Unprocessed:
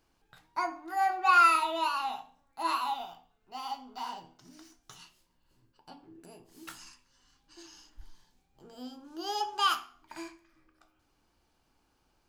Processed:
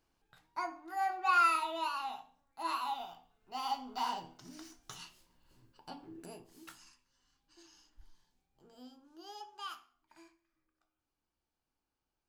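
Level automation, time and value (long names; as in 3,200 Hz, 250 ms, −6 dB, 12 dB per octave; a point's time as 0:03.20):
0:02.68 −6 dB
0:03.88 +3 dB
0:06.32 +3 dB
0:06.76 −9 dB
0:08.77 −9 dB
0:09.51 −17 dB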